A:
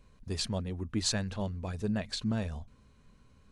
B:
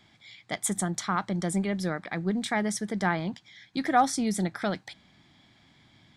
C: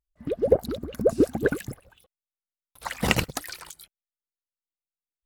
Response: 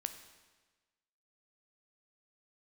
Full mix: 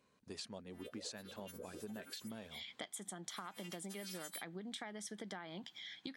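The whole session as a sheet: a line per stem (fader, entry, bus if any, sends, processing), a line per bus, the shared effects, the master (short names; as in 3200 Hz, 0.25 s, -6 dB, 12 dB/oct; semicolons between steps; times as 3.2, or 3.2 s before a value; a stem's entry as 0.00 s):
-6.0 dB, 0.00 s, no bus, no send, dry
-1.0 dB, 2.30 s, bus A, no send, dry
-2.5 dB, 0.55 s, bus A, no send, frequency quantiser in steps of 2 st; harmonic-percussive split harmonic +5 dB; compressor 6:1, threshold -29 dBFS, peak gain reduction 19 dB; auto duck -14 dB, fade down 1.00 s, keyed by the first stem
bus A: 0.0 dB, bell 3200 Hz +8.5 dB 0.31 oct; compressor, threshold -32 dBFS, peak gain reduction 13.5 dB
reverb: off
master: HPF 240 Hz 12 dB/oct; compressor 4:1, threshold -45 dBFS, peak gain reduction 13 dB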